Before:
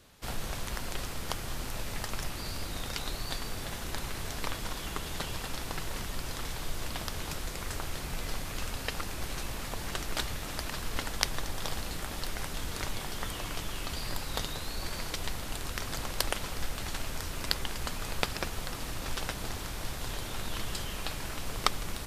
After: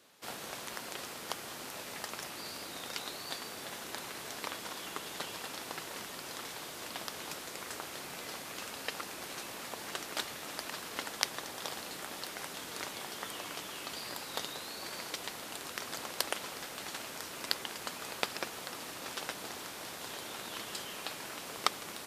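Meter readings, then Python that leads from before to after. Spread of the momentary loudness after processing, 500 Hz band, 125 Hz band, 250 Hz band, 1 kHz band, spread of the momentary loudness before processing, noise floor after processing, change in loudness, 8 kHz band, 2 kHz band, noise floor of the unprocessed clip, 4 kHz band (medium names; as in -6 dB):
6 LU, -3.0 dB, -17.5 dB, -6.5 dB, -2.5 dB, 5 LU, -45 dBFS, -3.5 dB, -2.5 dB, -2.5 dB, -39 dBFS, -2.5 dB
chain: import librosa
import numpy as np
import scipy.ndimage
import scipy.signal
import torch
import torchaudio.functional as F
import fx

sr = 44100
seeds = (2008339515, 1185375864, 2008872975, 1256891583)

y = scipy.signal.sosfilt(scipy.signal.butter(2, 270.0, 'highpass', fs=sr, output='sos'), x)
y = y * 10.0 ** (-2.5 / 20.0)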